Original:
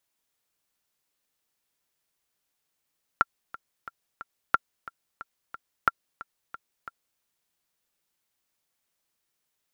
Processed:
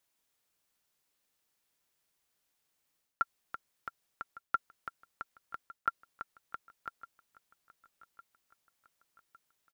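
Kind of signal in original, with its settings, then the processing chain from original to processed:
click track 180 BPM, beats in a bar 4, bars 3, 1,370 Hz, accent 19 dB −6 dBFS
reversed playback
downward compressor, threshold −28 dBFS
reversed playback
repeating echo 1,157 ms, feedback 55%, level −20 dB

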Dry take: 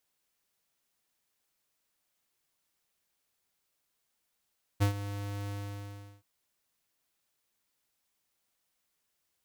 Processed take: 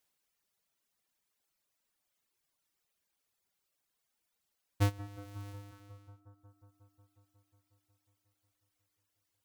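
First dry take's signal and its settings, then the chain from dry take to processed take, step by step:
note with an ADSR envelope square 101 Hz, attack 23 ms, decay 104 ms, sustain −13.5 dB, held 0.69 s, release 735 ms −23.5 dBFS
reverb reduction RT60 1.7 s
bucket-brigade delay 181 ms, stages 2,048, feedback 80%, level −16 dB

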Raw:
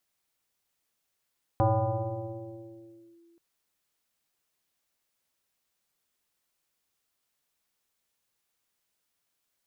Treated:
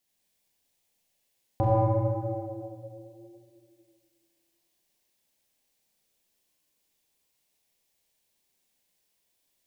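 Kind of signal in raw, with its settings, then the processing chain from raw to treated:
two-operator FM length 1.78 s, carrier 338 Hz, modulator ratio 0.65, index 2.7, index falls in 1.59 s linear, decay 2.64 s, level −19 dB
parametric band 1,300 Hz −11.5 dB 0.64 octaves
tape delay 109 ms, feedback 79%, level −7 dB, low-pass 1,100 Hz
four-comb reverb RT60 1.5 s, combs from 29 ms, DRR −3 dB

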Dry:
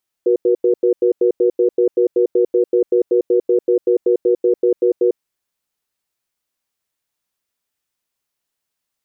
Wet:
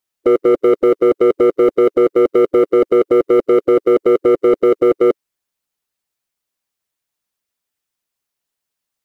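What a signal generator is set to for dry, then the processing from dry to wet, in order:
tone pair in a cadence 367 Hz, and 481 Hz, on 0.10 s, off 0.09 s, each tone −13.5 dBFS 4.93 s
harmonic and percussive parts rebalanced percussive +5 dB
leveller curve on the samples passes 2

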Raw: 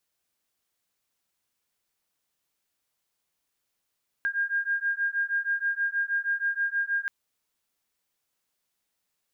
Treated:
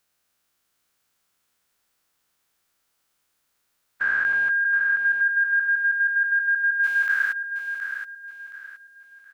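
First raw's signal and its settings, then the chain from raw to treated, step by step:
two tones that beat 1,610 Hz, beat 6.3 Hz, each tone −28 dBFS 2.83 s
every bin's largest magnitude spread in time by 480 ms
parametric band 1,400 Hz +5 dB 0.58 octaves
repeating echo 721 ms, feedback 32%, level −8 dB

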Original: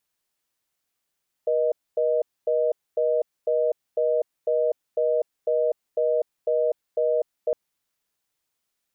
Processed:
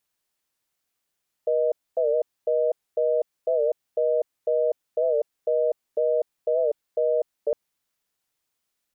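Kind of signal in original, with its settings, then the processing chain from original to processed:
call progress tone reorder tone, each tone −22 dBFS 6.06 s
wow of a warped record 78 rpm, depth 100 cents

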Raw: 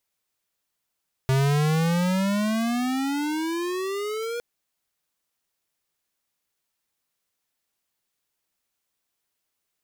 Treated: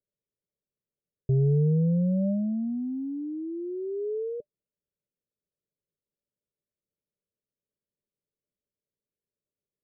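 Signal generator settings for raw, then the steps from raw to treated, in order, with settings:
pitch glide with a swell square, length 3.11 s, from 131 Hz, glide +22.5 semitones, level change −10 dB, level −20 dB
Chebyshev low-pass with heavy ripple 610 Hz, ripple 6 dB

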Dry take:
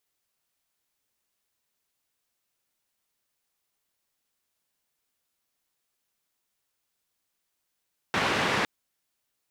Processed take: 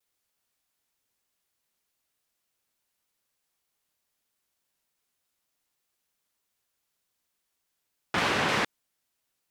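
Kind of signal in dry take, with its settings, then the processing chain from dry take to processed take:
band-limited noise 100–2,100 Hz, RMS −26 dBFS 0.51 s
pitch modulation by a square or saw wave saw down 3.3 Hz, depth 160 cents

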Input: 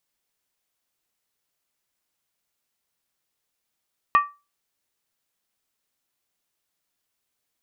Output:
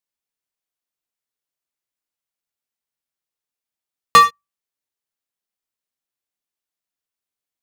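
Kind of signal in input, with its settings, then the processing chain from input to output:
struck skin, lowest mode 1,160 Hz, decay 0.27 s, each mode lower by 8.5 dB, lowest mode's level −10 dB
mains-hum notches 50/100/150/200 Hz
dynamic equaliser 2,500 Hz, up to +5 dB, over −37 dBFS, Q 0.83
leveller curve on the samples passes 5

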